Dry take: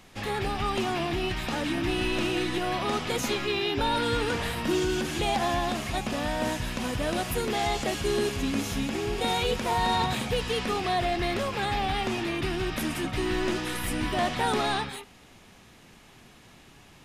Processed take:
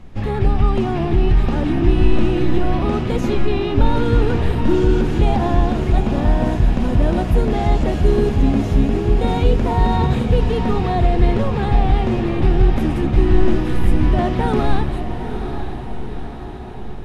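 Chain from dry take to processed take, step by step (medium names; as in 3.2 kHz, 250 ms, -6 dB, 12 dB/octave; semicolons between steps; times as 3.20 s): tilt EQ -4 dB/octave; echo that smears into a reverb 840 ms, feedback 59%, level -9 dB; trim +3 dB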